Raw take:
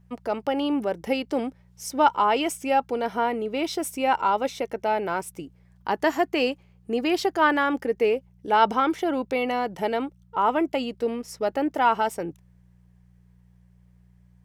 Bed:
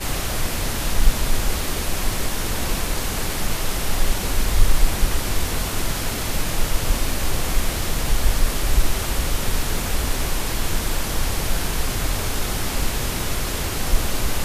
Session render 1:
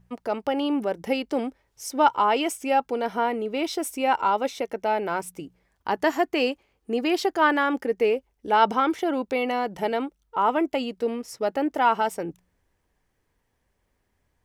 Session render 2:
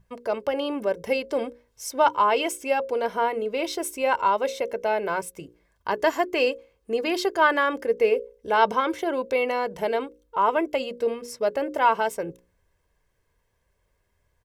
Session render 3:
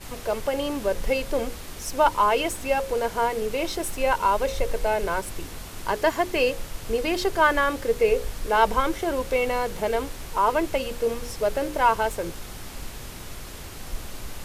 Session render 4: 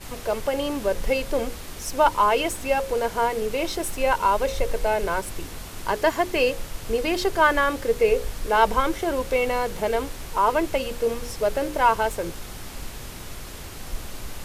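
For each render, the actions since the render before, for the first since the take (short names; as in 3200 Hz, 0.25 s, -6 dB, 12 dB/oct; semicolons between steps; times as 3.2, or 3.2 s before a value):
de-hum 60 Hz, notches 3
notches 60/120/180/240/300/360/420/480/540 Hz; comb 1.9 ms, depth 50%
add bed -14 dB
gain +1 dB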